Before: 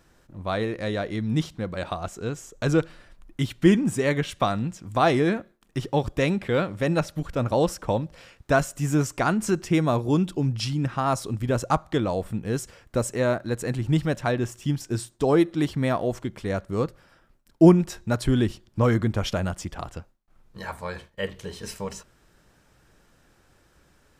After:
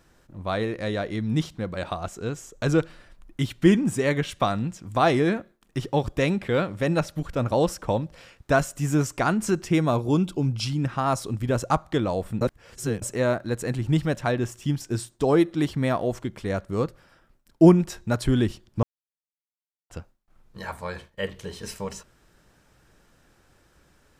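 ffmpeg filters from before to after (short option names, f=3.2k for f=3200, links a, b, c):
-filter_complex "[0:a]asettb=1/sr,asplit=3[a][b][c];[a]atrim=end=9.914[d];[b]atrim=start=9.91:end=10.66,asetpts=PTS-STARTPTS,afade=t=in:d=0.004:c=qsin,afade=t=out:st=0.746:d=0.004:c=qsin,asuperstop=centerf=1800:order=12:qfactor=5.4[e];[c]atrim=start=10.656[f];[d][e]acrossfade=d=0.004:c1=hsin:c2=qsin[g];[g][f]acrossfade=d=0.004:c1=qsin:c2=hsin,asplit=5[h][i][j][k][l];[h]atrim=end=12.412[m];[i]atrim=start=12.408:end=13.022,asetpts=PTS-STARTPTS,areverse[n];[j]atrim=start=13.018:end=18.83,asetpts=PTS-STARTPTS,afade=t=out:st=5.808:d=0.004:c=hsin[o];[k]atrim=start=18.83:end=19.9,asetpts=PTS-STARTPTS,volume=0[p];[l]atrim=start=19.9,asetpts=PTS-STARTPTS,afade=t=in:d=0.004:c=hsin[q];[m][n]acrossfade=d=0.004:c1=hsin:c2=hsin[r];[o][p][q]concat=n=3:v=0:a=1[s];[r][s]acrossfade=d=0.004:c1=hsin:c2=hsin"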